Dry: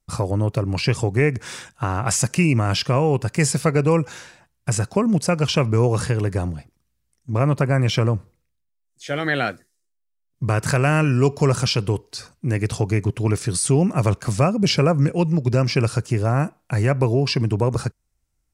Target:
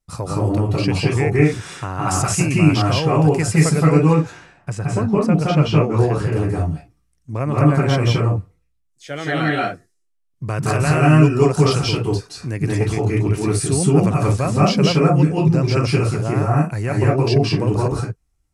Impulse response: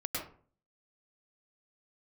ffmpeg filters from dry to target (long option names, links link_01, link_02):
-filter_complex "[0:a]asettb=1/sr,asplit=3[link_01][link_02][link_03];[link_01]atrim=end=4.134[link_04];[link_02]atrim=start=4.13:end=6.16,asetpts=PTS-STARTPTS,afade=type=in:duration=0.004:curve=qsin,afade=type=out:start_time=2.026:duration=0.004:curve=qsin,lowpass=frequency=2500:poles=1[link_05];[link_03]atrim=start=6.156[link_06];[link_04][link_05]acrossfade=duration=0.004:curve1=hsin:curve2=qsin[link_07];[link_07][link_06]acrossfade=duration=0.004:curve1=qsin:curve2=hsin[link_08];[1:a]atrim=start_sample=2205,atrim=end_sample=6174,asetrate=25578,aresample=44100[link_09];[link_08][link_09]afir=irnorm=-1:irlink=0,volume=-4dB"